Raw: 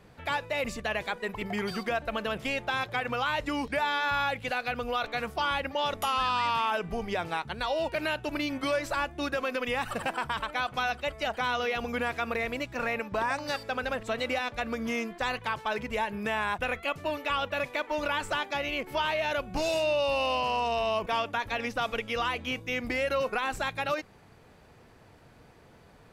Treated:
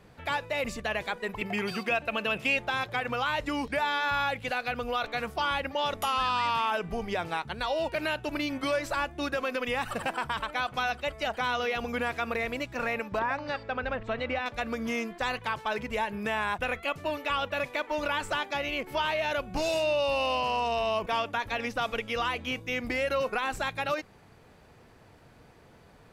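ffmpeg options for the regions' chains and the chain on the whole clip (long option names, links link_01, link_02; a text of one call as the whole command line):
ffmpeg -i in.wav -filter_complex "[0:a]asettb=1/sr,asplit=3[link_01][link_02][link_03];[link_01]atrim=end=1.414[link_04];[link_02]atrim=start=1.41:end=2.57,asetpts=PTS-STARTPTS,afade=type=in:duration=0.004:curve=qsin,afade=type=out:start_time=1.156:duration=0.004:curve=qsin,highpass=85,equalizer=frequency=2600:width=7.4:gain=13[link_05];[link_03]atrim=start=2.566[link_06];[link_04][link_05]acrossfade=duration=0.004:curve1=hsin:curve2=qsin[link_07];[link_07][link_06]acrossfade=duration=0.004:curve1=qsin:curve2=hsin,asettb=1/sr,asplit=3[link_08][link_09][link_10];[link_08]atrim=end=13.194[link_11];[link_09]atrim=start=13.19:end=14.46,asetpts=PTS-STARTPTS,afade=type=in:duration=0.004:curve=qsin,afade=type=out:start_time=1.266:duration=0.004:curve=qsin,lowpass=2800,asubboost=boost=3.5:cutoff=180[link_12];[link_10]atrim=start=14.456[link_13];[link_11][link_12]acrossfade=duration=0.004:curve1=hsin:curve2=qsin[link_14];[link_14][link_13]acrossfade=duration=0.004:curve1=qsin:curve2=hsin" out.wav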